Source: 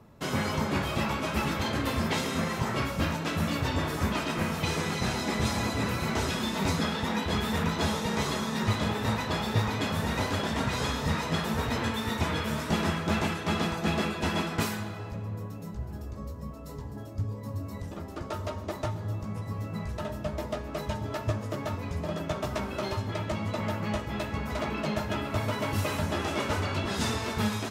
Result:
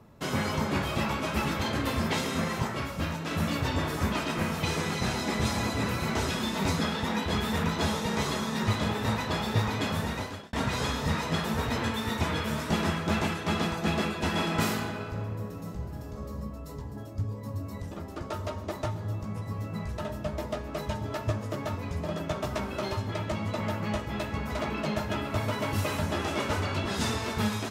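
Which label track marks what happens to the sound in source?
2.670000	3.310000	resonator 84 Hz, decay 0.19 s, mix 50%
9.960000	10.530000	fade out
14.290000	16.330000	reverb throw, RT60 1.4 s, DRR 1.5 dB

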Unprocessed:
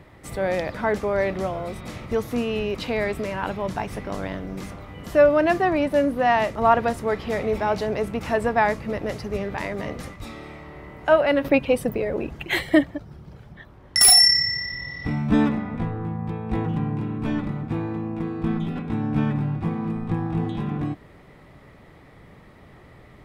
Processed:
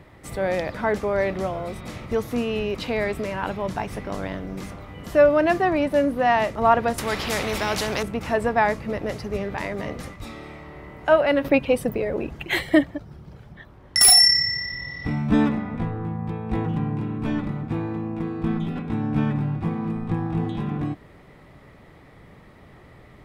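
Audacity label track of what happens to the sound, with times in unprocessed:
6.980000	8.030000	spectral compressor 2:1

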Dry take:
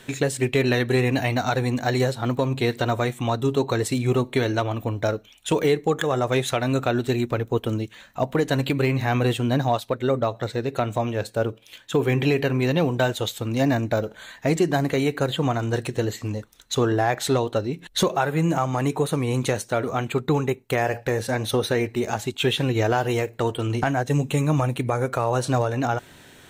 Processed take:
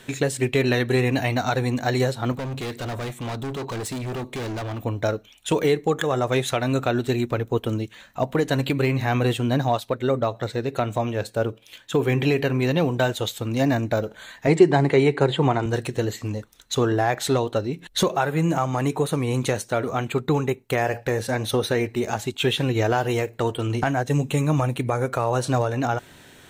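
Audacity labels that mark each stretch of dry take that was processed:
2.320000	4.850000	hard clip -27.5 dBFS
14.470000	15.660000	speaker cabinet 110–8900 Hz, peaks and dips at 140 Hz +6 dB, 390 Hz +9 dB, 880 Hz +8 dB, 2100 Hz +5 dB, 6200 Hz -8 dB

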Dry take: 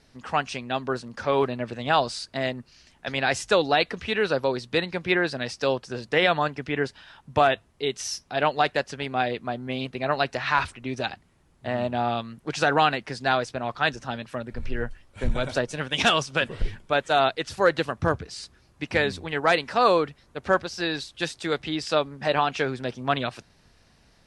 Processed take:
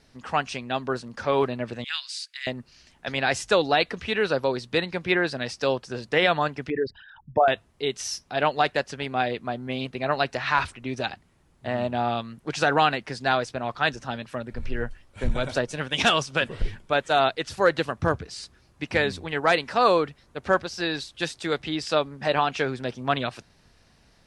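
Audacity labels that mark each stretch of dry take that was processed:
1.840000	2.470000	inverse Chebyshev high-pass stop band from 560 Hz, stop band 60 dB
6.700000	7.480000	formant sharpening exponent 3

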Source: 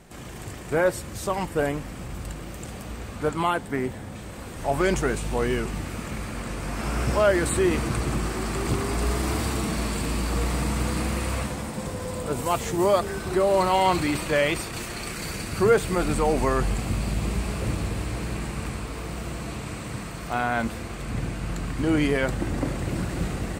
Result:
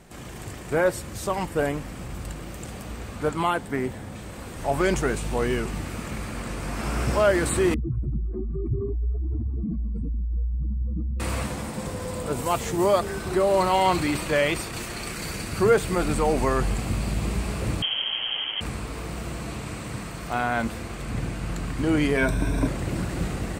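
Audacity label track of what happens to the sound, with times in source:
7.740000	11.200000	spectral contrast raised exponent 3.5
17.820000	18.610000	inverted band carrier 3200 Hz
22.170000	22.670000	ripple EQ crests per octave 1.6, crest to trough 13 dB

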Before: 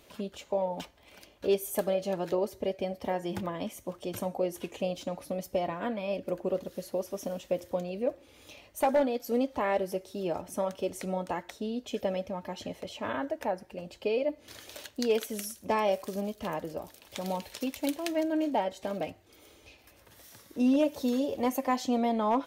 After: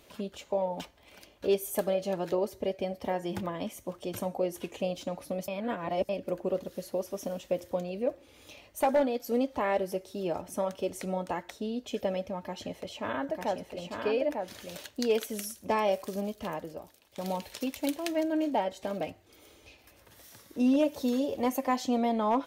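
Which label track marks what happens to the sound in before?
5.480000	6.090000	reverse
12.390000	14.770000	echo 0.898 s -4 dB
16.340000	17.180000	fade out, to -14 dB

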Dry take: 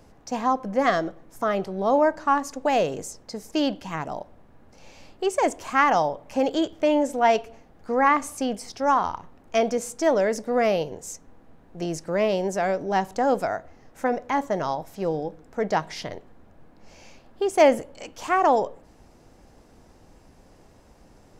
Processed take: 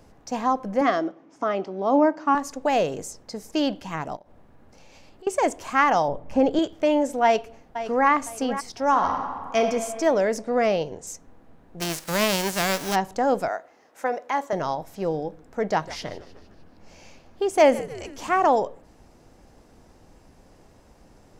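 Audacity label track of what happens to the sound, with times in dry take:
0.810000	2.350000	speaker cabinet 250–5900 Hz, peaks and dips at 290 Hz +9 dB, 490 Hz -3 dB, 1700 Hz -4 dB, 4000 Hz -7 dB
4.160000	5.270000	compressor, threshold -45 dBFS
6.080000	6.590000	tilt -2.5 dB/oct
7.240000	8.090000	echo throw 0.51 s, feedback 30%, level -11.5 dB
8.890000	9.610000	reverb throw, RT60 1.9 s, DRR 3 dB
10.410000	11.070000	LPF 9300 Hz 24 dB/oct
11.800000	12.940000	spectral whitening exponent 0.3
13.480000	14.530000	HPF 410 Hz
15.690000	18.470000	frequency-shifting echo 0.152 s, feedback 56%, per repeat -87 Hz, level -17 dB

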